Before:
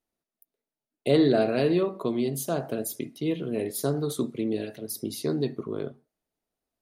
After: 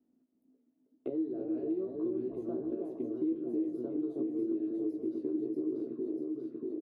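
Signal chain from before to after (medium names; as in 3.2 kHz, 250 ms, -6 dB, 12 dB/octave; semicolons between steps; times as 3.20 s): 1.11–2.43 s: octave divider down 1 oct, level 0 dB; dynamic bell 1 kHz, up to +5 dB, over -38 dBFS, Q 1.2; compression 20:1, threshold -30 dBFS, peak gain reduction 17 dB; auto-wah 260–2000 Hz, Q 8.1, up, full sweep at -11.5 dBFS; doubling 16 ms -5 dB; echo whose repeats swap between lows and highs 319 ms, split 1.1 kHz, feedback 77%, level -2.5 dB; three bands compressed up and down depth 70%; trim +4.5 dB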